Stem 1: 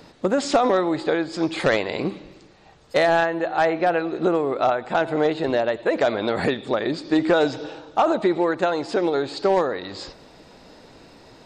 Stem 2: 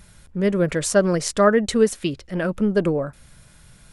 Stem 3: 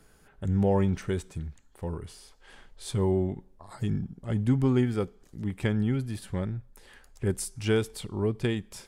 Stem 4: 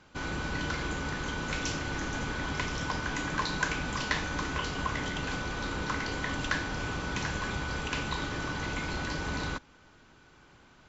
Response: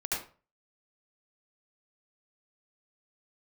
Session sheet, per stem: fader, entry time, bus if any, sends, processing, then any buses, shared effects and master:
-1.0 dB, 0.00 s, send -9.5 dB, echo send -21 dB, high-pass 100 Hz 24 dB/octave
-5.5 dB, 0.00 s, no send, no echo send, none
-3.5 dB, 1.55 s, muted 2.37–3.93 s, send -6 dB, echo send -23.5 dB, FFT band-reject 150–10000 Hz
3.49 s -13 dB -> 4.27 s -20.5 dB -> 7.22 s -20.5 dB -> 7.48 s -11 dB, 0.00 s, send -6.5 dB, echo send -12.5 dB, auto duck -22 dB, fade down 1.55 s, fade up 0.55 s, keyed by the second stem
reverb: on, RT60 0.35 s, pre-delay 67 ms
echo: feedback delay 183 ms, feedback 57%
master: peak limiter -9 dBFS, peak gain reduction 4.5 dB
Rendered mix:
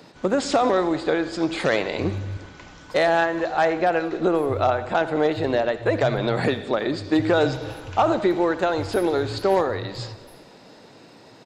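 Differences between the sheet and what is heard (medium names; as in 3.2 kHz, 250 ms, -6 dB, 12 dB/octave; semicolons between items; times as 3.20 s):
stem 2: muted; reverb return -10.0 dB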